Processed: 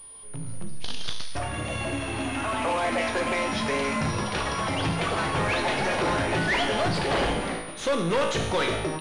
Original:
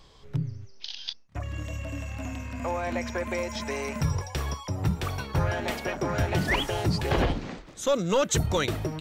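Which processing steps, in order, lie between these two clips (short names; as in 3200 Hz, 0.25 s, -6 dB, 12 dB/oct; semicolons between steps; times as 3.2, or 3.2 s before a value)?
in parallel at -1 dB: compressor, threshold -35 dBFS, peak gain reduction 14 dB; on the sum: bell 64 Hz -12 dB 3 oct; resonator 55 Hz, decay 0.79 s, harmonics all, mix 80%; echoes that change speed 0.341 s, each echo +4 st, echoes 2, each echo -6 dB; soft clip -36 dBFS, distortion -10 dB; AGC gain up to 11 dB; pulse-width modulation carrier 9600 Hz; gain +4.5 dB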